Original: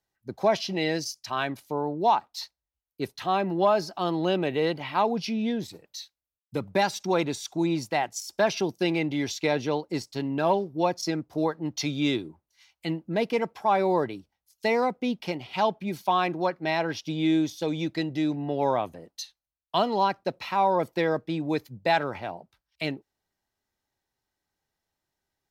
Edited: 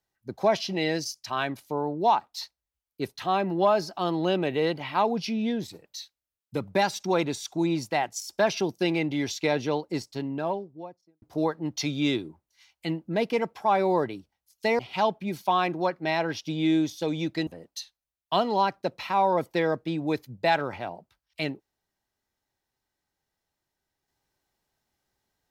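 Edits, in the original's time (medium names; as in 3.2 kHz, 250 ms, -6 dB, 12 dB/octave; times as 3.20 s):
9.84–11.22 s: studio fade out
14.79–15.39 s: delete
18.07–18.89 s: delete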